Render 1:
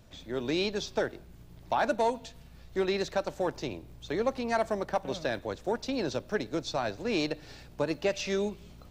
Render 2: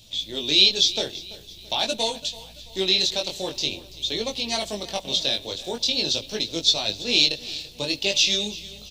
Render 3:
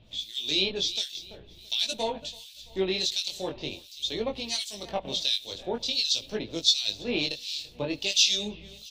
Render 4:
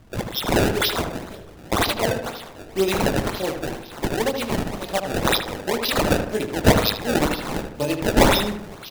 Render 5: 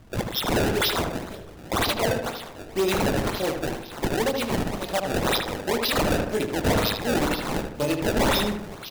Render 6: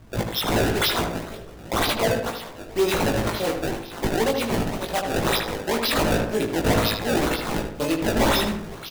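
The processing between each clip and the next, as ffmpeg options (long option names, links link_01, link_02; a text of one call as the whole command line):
ffmpeg -i in.wav -af "highshelf=frequency=2300:width_type=q:width=3:gain=14,flanger=delay=18:depth=4.4:speed=0.46,aecho=1:1:335|670|1005|1340:0.119|0.0535|0.0241|0.0108,volume=3dB" out.wav
ffmpeg -i in.wav -filter_complex "[0:a]acrossover=split=2400[link_01][link_02];[link_01]aeval=exprs='val(0)*(1-1/2+1/2*cos(2*PI*1.4*n/s))':channel_layout=same[link_03];[link_02]aeval=exprs='val(0)*(1-1/2-1/2*cos(2*PI*1.4*n/s))':channel_layout=same[link_04];[link_03][link_04]amix=inputs=2:normalize=0" out.wav
ffmpeg -i in.wav -filter_complex "[0:a]acrusher=samples=24:mix=1:aa=0.000001:lfo=1:lforange=38.4:lforate=2,asplit=2[link_01][link_02];[link_02]adelay=77,lowpass=frequency=2200:poles=1,volume=-6.5dB,asplit=2[link_03][link_04];[link_04]adelay=77,lowpass=frequency=2200:poles=1,volume=0.46,asplit=2[link_05][link_06];[link_06]adelay=77,lowpass=frequency=2200:poles=1,volume=0.46,asplit=2[link_07][link_08];[link_08]adelay=77,lowpass=frequency=2200:poles=1,volume=0.46,asplit=2[link_09][link_10];[link_10]adelay=77,lowpass=frequency=2200:poles=1,volume=0.46[link_11];[link_03][link_05][link_07][link_09][link_11]amix=inputs=5:normalize=0[link_12];[link_01][link_12]amix=inputs=2:normalize=0,volume=7dB" out.wav
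ffmpeg -i in.wav -af "asoftclip=type=hard:threshold=-18.5dB" out.wav
ffmpeg -i in.wav -filter_complex "[0:a]asplit=2[link_01][link_02];[link_02]adelay=18,volume=-4dB[link_03];[link_01][link_03]amix=inputs=2:normalize=0" out.wav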